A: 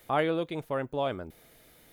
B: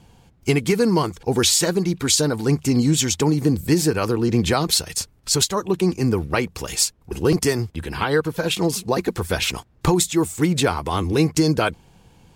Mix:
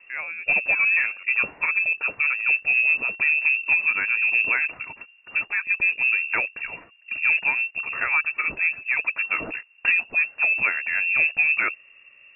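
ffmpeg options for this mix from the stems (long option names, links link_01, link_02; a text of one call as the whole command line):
ffmpeg -i stem1.wav -i stem2.wav -filter_complex "[0:a]volume=-5.5dB[link_01];[1:a]lowshelf=frequency=130:gain=4,acontrast=85,volume=-9.5dB[link_02];[link_01][link_02]amix=inputs=2:normalize=0,lowpass=frequency=2400:width_type=q:width=0.5098,lowpass=frequency=2400:width_type=q:width=0.6013,lowpass=frequency=2400:width_type=q:width=0.9,lowpass=frequency=2400:width_type=q:width=2.563,afreqshift=-2800" out.wav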